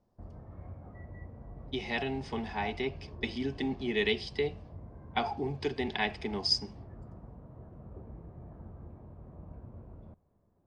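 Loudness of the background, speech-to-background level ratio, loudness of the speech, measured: -49.0 LUFS, 15.5 dB, -33.5 LUFS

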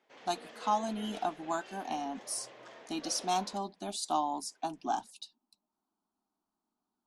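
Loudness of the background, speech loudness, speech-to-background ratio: -50.5 LUFS, -35.5 LUFS, 15.0 dB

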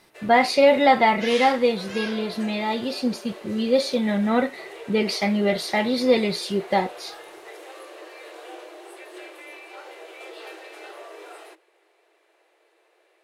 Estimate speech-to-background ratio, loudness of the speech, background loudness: 17.0 dB, -22.0 LUFS, -39.0 LUFS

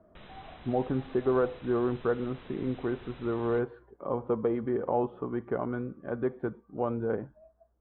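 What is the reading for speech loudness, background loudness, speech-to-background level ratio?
-31.5 LUFS, -51.0 LUFS, 19.5 dB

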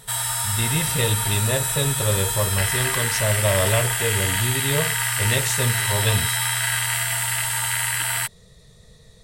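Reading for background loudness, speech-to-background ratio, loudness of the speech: -21.5 LUFS, -3.0 dB, -24.5 LUFS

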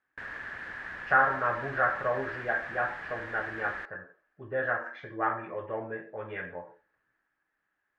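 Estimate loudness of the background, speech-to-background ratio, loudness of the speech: -39.5 LUFS, 8.5 dB, -31.0 LUFS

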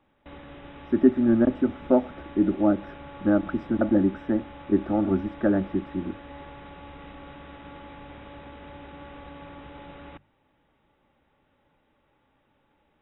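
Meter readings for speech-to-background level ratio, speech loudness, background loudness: 19.5 dB, -24.5 LUFS, -44.0 LUFS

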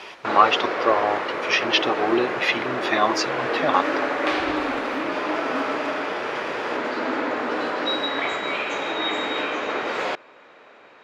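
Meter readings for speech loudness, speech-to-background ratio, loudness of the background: -22.5 LUFS, 3.0 dB, -25.5 LUFS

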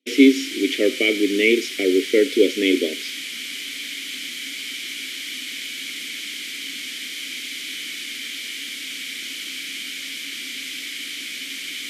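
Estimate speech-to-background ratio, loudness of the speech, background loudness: 9.5 dB, -19.0 LUFS, -28.5 LUFS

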